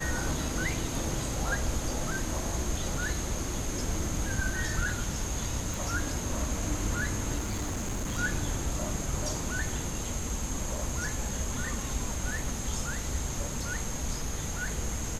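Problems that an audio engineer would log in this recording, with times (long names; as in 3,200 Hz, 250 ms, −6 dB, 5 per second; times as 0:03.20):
0:05.74: click
0:07.38–0:08.19: clipping −28.5 dBFS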